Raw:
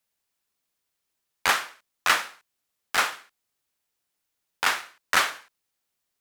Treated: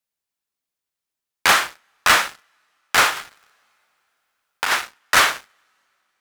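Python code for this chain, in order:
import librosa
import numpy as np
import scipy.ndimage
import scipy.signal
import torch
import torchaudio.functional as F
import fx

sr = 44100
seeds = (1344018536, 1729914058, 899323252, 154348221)

y = fx.rev_double_slope(x, sr, seeds[0], early_s=0.26, late_s=3.5, knee_db=-19, drr_db=19.0)
y = fx.over_compress(y, sr, threshold_db=-30.0, ratio=-1.0, at=(3.15, 4.71), fade=0.02)
y = fx.leveller(y, sr, passes=3)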